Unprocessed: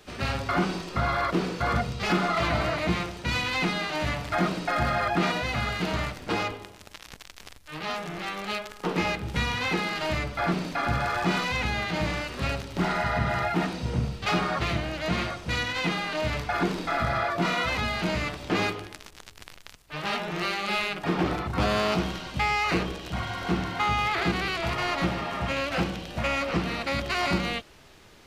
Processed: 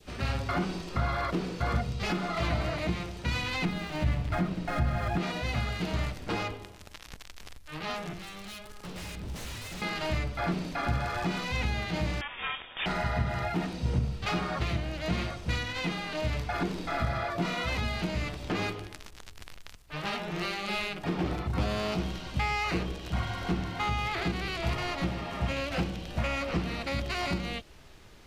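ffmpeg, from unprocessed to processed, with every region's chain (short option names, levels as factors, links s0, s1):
-filter_complex "[0:a]asettb=1/sr,asplit=3[s0][s1][s2];[s0]atrim=end=3.654[s3];[s1]atrim=start=3.65:end=5.18,asetpts=PTS-STARTPTS,afade=t=in:d=0.004:c=qsin,afade=t=out:st=1.526:d=0.004:c=qsin,bass=f=250:g=8,treble=f=4000:g=-7,aeval=exprs='sgn(val(0))*max(abs(val(0))-0.00891,0)':c=same[s4];[s2]atrim=start=5.176[s5];[s3][s4]acrossfade=d=0.004:c1=hsin:c2=qsin[s6];[s6][s5]acrossfade=d=0.004:c1=qsin:c2=hsin,asettb=1/sr,asplit=3[s7][s8][s9];[s7]atrim=end=8.134[s10];[s8]atrim=start=8.13:end=9.82,asetpts=PTS-STARTPTS,afade=t=in:d=0.004:c=qsin,afade=t=out:st=1.686:d=0.004:c=qsin,acrossover=split=180|3000[s11][s12][s13];[s12]acompressor=threshold=0.00631:ratio=3:attack=3.2:release=140:knee=2.83:detection=peak[s14];[s11][s14][s13]amix=inputs=3:normalize=0,aeval=exprs='0.0211*(abs(mod(val(0)/0.0211+3,4)-2)-1)':c=same[s15];[s9]atrim=start=9.816[s16];[s10][s15]acrossfade=d=0.004:c1=hsin:c2=qsin[s17];[s17][s16]acrossfade=d=0.004:c1=qsin:c2=hsin,asettb=1/sr,asplit=3[s18][s19][s20];[s18]atrim=end=12.214[s21];[s19]atrim=start=12.21:end=12.86,asetpts=PTS-STARTPTS,afade=t=in:d=0.004:c=qsin,afade=t=out:st=0.646:d=0.004:c=qsin,highpass=f=480:p=1,tiltshelf=f=690:g=-6.5,lowpass=f=3200:t=q:w=0.5098,lowpass=f=3200:t=q:w=0.6013,lowpass=f=3200:t=q:w=0.9,lowpass=f=3200:t=q:w=2.563,afreqshift=-3800[s22];[s20]atrim=start=12.856[s23];[s21][s22]acrossfade=d=0.004:c1=hsin:c2=qsin[s24];[s24][s23]acrossfade=d=0.004:c1=qsin:c2=hsin,adynamicequalizer=threshold=0.00891:dfrequency=1300:dqfactor=1.1:tfrequency=1300:tqfactor=1.1:attack=5:release=100:ratio=0.375:range=2:mode=cutabove:tftype=bell,alimiter=limit=0.126:level=0:latency=1:release=340,lowshelf=f=98:g=9.5,volume=0.708"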